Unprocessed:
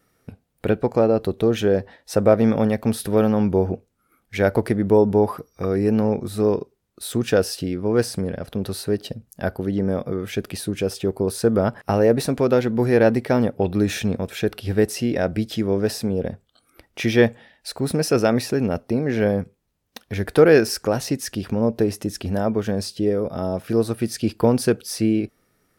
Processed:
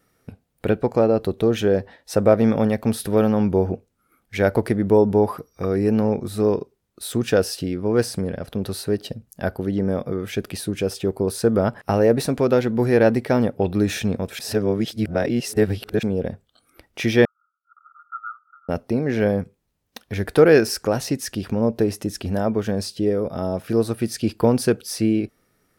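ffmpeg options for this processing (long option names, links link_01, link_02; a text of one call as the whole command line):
ffmpeg -i in.wav -filter_complex "[0:a]asettb=1/sr,asplit=3[link_01][link_02][link_03];[link_01]atrim=end=17.254[link_04];[link_02]atrim=start=17.25:end=18.69,asetpts=PTS-STARTPTS,afade=type=in:duration=0.004:curve=qsin,afade=type=out:start_time=1.436:duration=0.004:curve=qsin,asuperpass=centerf=1300:order=12:qfactor=5.4[link_05];[link_03]atrim=start=18.686[link_06];[link_04][link_05]acrossfade=duration=0.004:curve1=hsin:curve2=qsin[link_07];[link_07][link_06]acrossfade=duration=0.004:curve1=qsin:curve2=hsin,asplit=3[link_08][link_09][link_10];[link_08]atrim=end=14.392[link_11];[link_09]atrim=start=14.388:end=16.032,asetpts=PTS-STARTPTS,areverse[link_12];[link_10]atrim=start=16.028[link_13];[link_11][link_12]acrossfade=duration=0.004:curve1=hsin:curve2=hsin[link_14];[link_14][link_13]acrossfade=duration=0.004:curve1=hsin:curve2=hsin" out.wav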